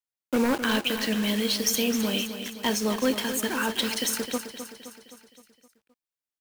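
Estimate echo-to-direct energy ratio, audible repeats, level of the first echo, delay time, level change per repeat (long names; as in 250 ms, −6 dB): −8.5 dB, 5, −10.0 dB, 260 ms, −5.0 dB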